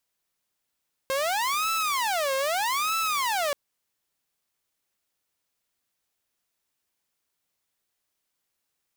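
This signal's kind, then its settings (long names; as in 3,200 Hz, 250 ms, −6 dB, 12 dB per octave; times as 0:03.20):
siren wail 534–1,320 Hz 0.8 per second saw −21.5 dBFS 2.43 s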